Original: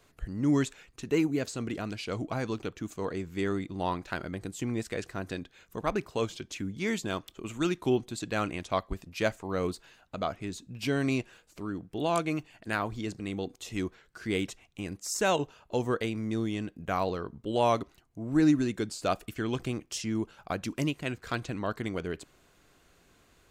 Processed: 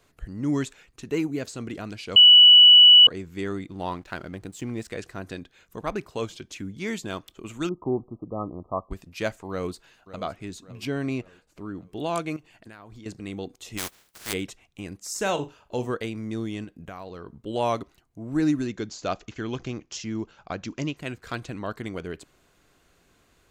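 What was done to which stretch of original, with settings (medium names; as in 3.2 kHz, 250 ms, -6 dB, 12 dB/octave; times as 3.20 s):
2.16–3.07 s: bleep 2.95 kHz -8 dBFS
3.71–4.88 s: hysteresis with a dead band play -50.5 dBFS
7.69–8.91 s: brick-wall FIR low-pass 1.3 kHz
9.50–10.17 s: echo throw 560 ms, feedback 50%, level -15 dB
10.85–11.78 s: treble shelf 3 kHz -8.5 dB
12.36–13.06 s: compression 12:1, threshold -41 dBFS
13.77–14.32 s: spectral contrast reduction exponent 0.2
14.97–15.91 s: flutter echo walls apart 6.9 m, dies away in 0.21 s
16.64–17.27 s: compression, threshold -35 dBFS
18.66–20.97 s: careless resampling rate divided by 3×, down none, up filtered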